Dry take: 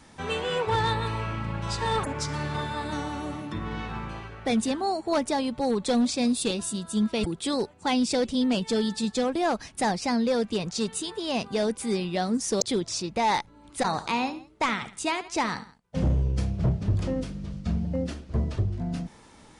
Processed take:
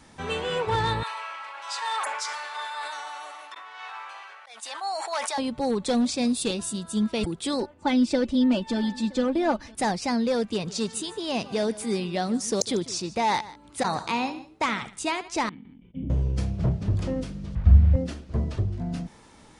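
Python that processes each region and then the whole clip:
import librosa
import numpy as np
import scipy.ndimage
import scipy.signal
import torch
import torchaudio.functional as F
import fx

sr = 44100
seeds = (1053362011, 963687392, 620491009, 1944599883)

y = fx.chain(x, sr, fx.auto_swell(attack_ms=306.0),
    fx.highpass(hz=750.0, slope=24),
    fx.sustainer(db_per_s=26.0), at=(1.03, 5.38))
y = fx.chain(y, sr, fx.lowpass(hz=2300.0, slope=6),
    fx.comb(ms=3.4, depth=0.72),
    fx.echo_single(ms=970, db=-23.0), at=(7.6, 9.75))
y = fx.chain(y, sr, fx.highpass(hz=53.0, slope=12),
    fx.echo_single(ms=149, db=-18.0), at=(10.49, 14.81))
y = fx.chain(y, sr, fx.formant_cascade(vowel='i'),
    fx.sustainer(db_per_s=32.0), at=(15.49, 16.1))
y = fx.chain(y, sr, fx.delta_mod(bps=64000, step_db=-38.0),
    fx.lowpass(hz=2100.0, slope=12),
    fx.low_shelf_res(hz=130.0, db=13.5, q=1.5), at=(17.55, 17.96))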